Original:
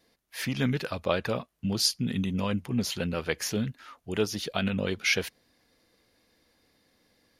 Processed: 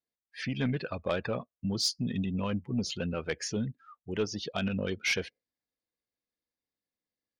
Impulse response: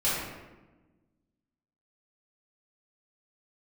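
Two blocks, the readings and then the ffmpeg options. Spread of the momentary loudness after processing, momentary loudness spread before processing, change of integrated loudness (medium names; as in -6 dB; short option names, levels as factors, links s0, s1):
9 LU, 9 LU, -3.5 dB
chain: -af "lowpass=f=9100:w=0.5412,lowpass=f=9100:w=1.3066,afftdn=nr=27:nf=-39,asoftclip=type=tanh:threshold=0.133,volume=0.794"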